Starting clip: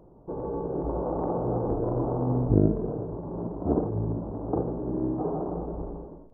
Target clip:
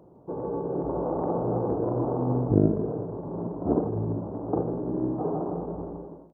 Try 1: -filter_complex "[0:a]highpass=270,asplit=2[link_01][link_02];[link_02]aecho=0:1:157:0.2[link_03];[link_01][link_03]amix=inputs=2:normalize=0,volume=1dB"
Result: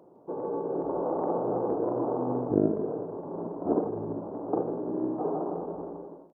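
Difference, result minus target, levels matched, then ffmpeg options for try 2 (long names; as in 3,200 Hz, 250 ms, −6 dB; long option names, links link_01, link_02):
125 Hz band −8.5 dB
-filter_complex "[0:a]highpass=99,asplit=2[link_01][link_02];[link_02]aecho=0:1:157:0.2[link_03];[link_01][link_03]amix=inputs=2:normalize=0,volume=1dB"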